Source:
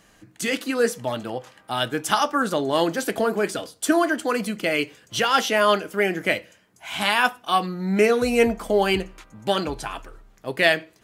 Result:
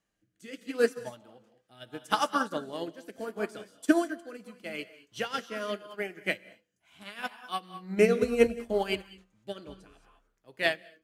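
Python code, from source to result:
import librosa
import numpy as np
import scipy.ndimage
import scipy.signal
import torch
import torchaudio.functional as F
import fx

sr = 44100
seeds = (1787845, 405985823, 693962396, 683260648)

y = fx.rev_gated(x, sr, seeds[0], gate_ms=240, shape='rising', drr_db=7.0)
y = fx.rotary(y, sr, hz=0.75)
y = fx.upward_expand(y, sr, threshold_db=-30.0, expansion=2.5)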